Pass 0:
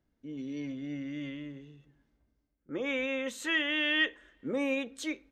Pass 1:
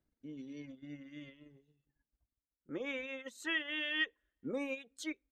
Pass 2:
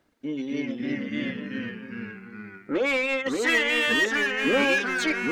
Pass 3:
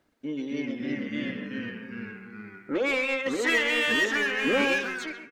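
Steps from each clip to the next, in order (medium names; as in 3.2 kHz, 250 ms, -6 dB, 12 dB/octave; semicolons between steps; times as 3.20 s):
reverb removal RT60 1.7 s; transient shaper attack +3 dB, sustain -7 dB; trim -6.5 dB
overdrive pedal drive 22 dB, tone 2.1 kHz, clips at -22.5 dBFS; ever faster or slower copies 244 ms, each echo -2 st, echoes 3; trim +8.5 dB
fade out at the end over 0.67 s; speakerphone echo 130 ms, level -9 dB; trim -2 dB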